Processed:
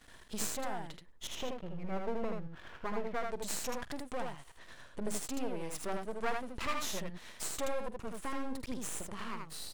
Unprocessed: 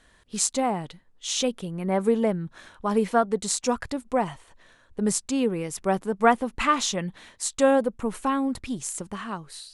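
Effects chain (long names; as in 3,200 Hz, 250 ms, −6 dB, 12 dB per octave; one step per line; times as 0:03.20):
0:01.27–0:03.30: low-pass filter 2,600 Hz 24 dB per octave
downward compressor 2 to 1, threshold −49 dBFS, peak gain reduction 19 dB
half-wave rectification
ambience of single reflections 47 ms −17 dB, 79 ms −3.5 dB
level +5.5 dB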